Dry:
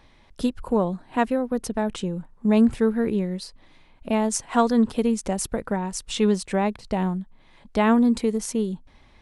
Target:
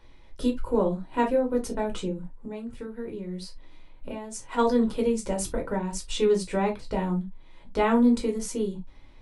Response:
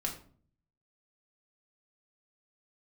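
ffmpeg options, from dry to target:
-filter_complex "[0:a]asplit=3[s0][s1][s2];[s0]afade=t=out:st=2.09:d=0.02[s3];[s1]acompressor=threshold=0.0355:ratio=8,afade=t=in:st=2.09:d=0.02,afade=t=out:st=4.57:d=0.02[s4];[s2]afade=t=in:st=4.57:d=0.02[s5];[s3][s4][s5]amix=inputs=3:normalize=0[s6];[1:a]atrim=start_sample=2205,atrim=end_sample=6174,asetrate=79380,aresample=44100[s7];[s6][s7]afir=irnorm=-1:irlink=0"

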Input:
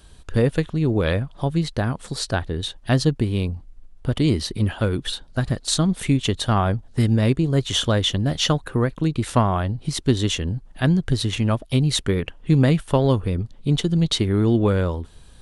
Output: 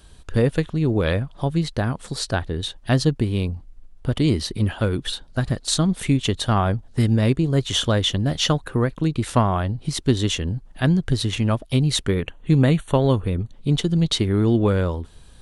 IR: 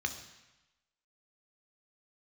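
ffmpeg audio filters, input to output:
-filter_complex "[0:a]asettb=1/sr,asplit=3[s0][s1][s2];[s0]atrim=end=12.144[s3];[s1]atrim=start=12.14:end=13.54,asetpts=PTS-STARTPTS,afade=t=in:d=0.004:c=qsin,afade=t=out:st=1.396:d=0.004:c=qsin,asuperstop=centerf=5100:order=20:qfactor=4.2[s4];[s2]atrim=start=13.536[s5];[s3][s4]acrossfade=d=0.004:c1=hsin:c2=qsin[s6];[s6][s5]acrossfade=d=0.004:c1=qsin:c2=hsin"

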